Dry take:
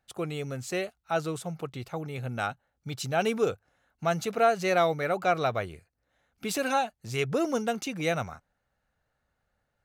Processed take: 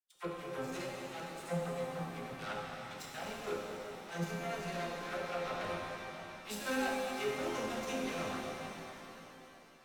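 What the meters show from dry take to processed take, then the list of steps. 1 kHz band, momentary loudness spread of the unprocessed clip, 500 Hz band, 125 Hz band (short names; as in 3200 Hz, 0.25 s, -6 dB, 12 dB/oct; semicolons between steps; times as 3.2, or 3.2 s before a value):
-10.5 dB, 12 LU, -10.5 dB, -10.0 dB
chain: in parallel at -2.5 dB: level quantiser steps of 11 dB; on the sum: limiter -16 dBFS, peak gain reduction 9 dB; reverse; compressor, threshold -34 dBFS, peak gain reduction 13 dB; reverse; resonator bank F3 minor, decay 0.35 s; added harmonics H 3 -25 dB, 7 -19 dB, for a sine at -39.5 dBFS; vibrato 0.44 Hz 8.5 cents; dispersion lows, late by 52 ms, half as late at 770 Hz; shimmer reverb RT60 3.4 s, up +7 st, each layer -8 dB, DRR -2.5 dB; gain +14.5 dB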